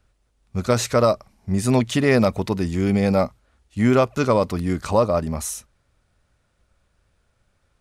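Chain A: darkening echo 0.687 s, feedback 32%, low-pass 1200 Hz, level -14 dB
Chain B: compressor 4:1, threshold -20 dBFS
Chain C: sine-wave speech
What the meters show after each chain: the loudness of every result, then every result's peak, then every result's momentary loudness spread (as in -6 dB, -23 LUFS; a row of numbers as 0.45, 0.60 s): -21.0, -26.0, -20.5 LUFS; -5.5, -11.0, -5.0 dBFS; 14, 6, 11 LU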